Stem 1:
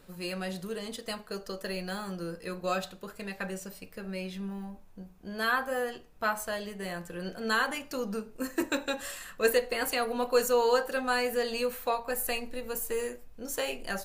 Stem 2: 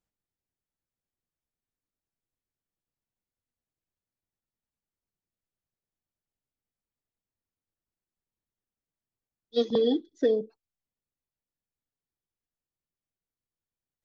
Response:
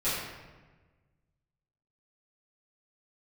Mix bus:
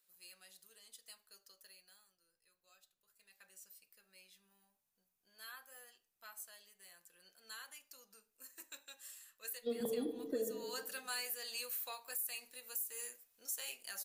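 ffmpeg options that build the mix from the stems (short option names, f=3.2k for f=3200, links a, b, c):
-filter_complex "[0:a]aderivative,volume=11.5dB,afade=t=out:st=1.44:d=0.72:silence=0.251189,afade=t=in:st=2.99:d=0.66:silence=0.237137,afade=t=in:st=10.6:d=0.25:silence=0.281838,asplit=2[a][b];[1:a]lowpass=2.7k,adelay=100,volume=-5.5dB,asplit=2[c][d];[d]volume=-19.5dB[e];[b]apad=whole_len=623843[f];[c][f]sidechaincompress=threshold=-54dB:ratio=8:attack=50:release=357[g];[2:a]atrim=start_sample=2205[h];[e][h]afir=irnorm=-1:irlink=0[i];[a][g][i]amix=inputs=3:normalize=0,alimiter=level_in=5dB:limit=-24dB:level=0:latency=1:release=176,volume=-5dB"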